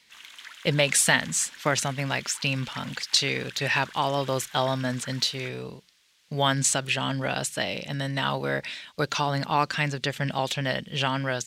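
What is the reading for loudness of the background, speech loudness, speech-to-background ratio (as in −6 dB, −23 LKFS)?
−43.5 LKFS, −26.0 LKFS, 17.5 dB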